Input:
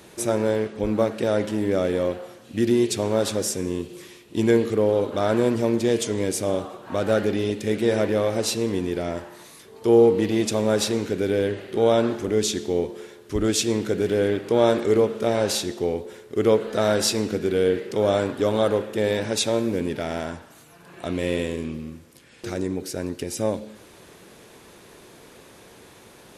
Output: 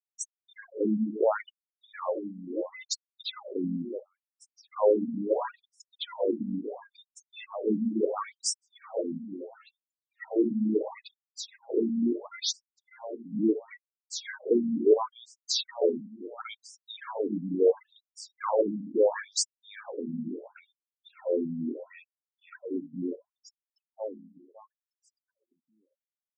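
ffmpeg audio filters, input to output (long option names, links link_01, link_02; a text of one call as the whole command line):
ffmpeg -i in.wav -filter_complex "[0:a]adynamicequalizer=threshold=0.0158:dfrequency=980:dqfactor=1.4:tfrequency=980:tqfactor=1.4:attack=5:release=100:ratio=0.375:range=3:mode=boostabove:tftype=bell,afftfilt=real='re*gte(hypot(re,im),0.0447)':imag='im*gte(hypot(re,im),0.0447)':win_size=1024:overlap=0.75,asplit=2[link_01][link_02];[link_02]aecho=0:1:574|1148|1722|2296:0.282|0.093|0.0307|0.0101[link_03];[link_01][link_03]amix=inputs=2:normalize=0,afftfilt=real='re*between(b*sr/1024,200*pow(7300/200,0.5+0.5*sin(2*PI*0.73*pts/sr))/1.41,200*pow(7300/200,0.5+0.5*sin(2*PI*0.73*pts/sr))*1.41)':imag='im*between(b*sr/1024,200*pow(7300/200,0.5+0.5*sin(2*PI*0.73*pts/sr))/1.41,200*pow(7300/200,0.5+0.5*sin(2*PI*0.73*pts/sr))*1.41)':win_size=1024:overlap=0.75" out.wav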